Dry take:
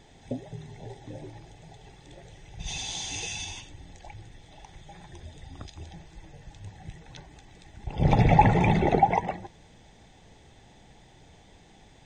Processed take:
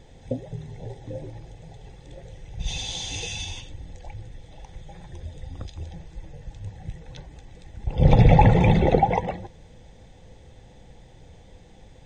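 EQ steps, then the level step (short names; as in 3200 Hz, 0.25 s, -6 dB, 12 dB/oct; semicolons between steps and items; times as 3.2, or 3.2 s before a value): dynamic EQ 3500 Hz, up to +5 dB, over -52 dBFS, Q 1.8; low shelf 160 Hz +11 dB; bell 510 Hz +13 dB 0.21 oct; -1.0 dB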